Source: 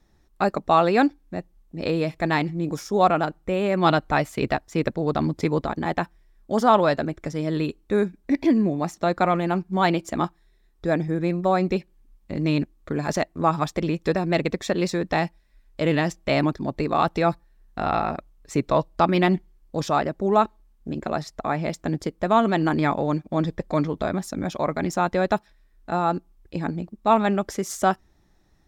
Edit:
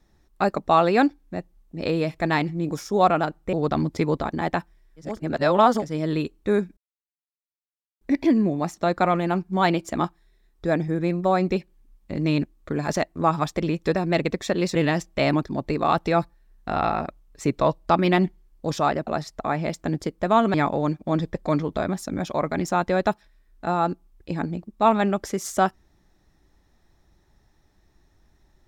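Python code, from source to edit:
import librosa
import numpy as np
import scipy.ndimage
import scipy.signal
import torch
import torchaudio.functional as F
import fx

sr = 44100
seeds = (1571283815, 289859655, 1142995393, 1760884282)

y = fx.edit(x, sr, fx.cut(start_s=3.53, length_s=1.44),
    fx.reverse_span(start_s=6.52, length_s=0.75, crossfade_s=0.24),
    fx.insert_silence(at_s=8.21, length_s=1.24),
    fx.cut(start_s=14.95, length_s=0.9),
    fx.cut(start_s=20.17, length_s=0.9),
    fx.cut(start_s=22.54, length_s=0.25), tone=tone)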